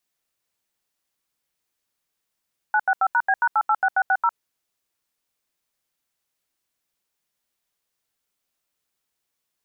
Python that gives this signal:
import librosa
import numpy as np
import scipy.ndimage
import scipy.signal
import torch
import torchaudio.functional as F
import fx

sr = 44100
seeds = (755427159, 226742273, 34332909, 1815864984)

y = fx.dtmf(sr, digits='965#B#886660', tone_ms=56, gap_ms=80, level_db=-18.5)